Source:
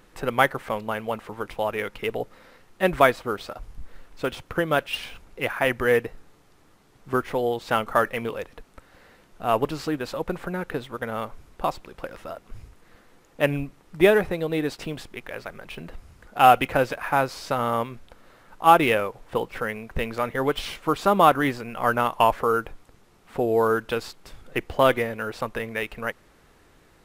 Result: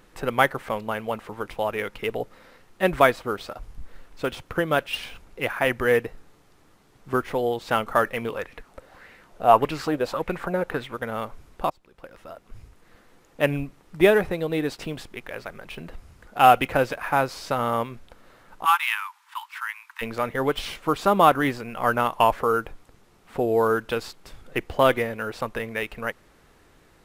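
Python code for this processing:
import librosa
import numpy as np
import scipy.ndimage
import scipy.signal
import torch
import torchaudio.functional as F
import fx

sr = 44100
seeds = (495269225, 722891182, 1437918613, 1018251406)

y = fx.bell_lfo(x, sr, hz=1.7, low_hz=510.0, high_hz=2400.0, db=11, at=(8.35, 10.94), fade=0.02)
y = fx.steep_highpass(y, sr, hz=890.0, slope=96, at=(18.64, 20.01), fade=0.02)
y = fx.edit(y, sr, fx.fade_in_from(start_s=11.7, length_s=1.72, curve='qsin', floor_db=-22.5), tone=tone)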